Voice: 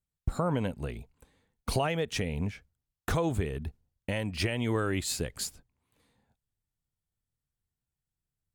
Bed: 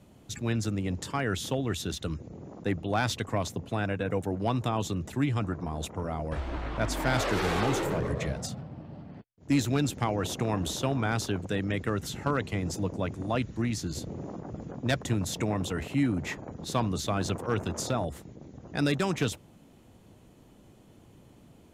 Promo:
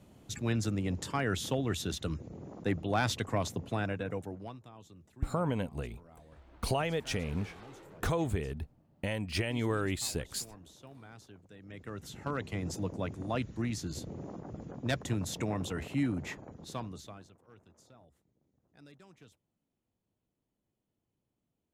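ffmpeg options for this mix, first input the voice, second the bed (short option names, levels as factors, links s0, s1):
-filter_complex "[0:a]adelay=4950,volume=0.75[s0];[1:a]volume=7.08,afade=t=out:st=3.68:d=0.92:silence=0.0841395,afade=t=in:st=11.59:d=1.07:silence=0.112202,afade=t=out:st=16.09:d=1.2:silence=0.0562341[s1];[s0][s1]amix=inputs=2:normalize=0"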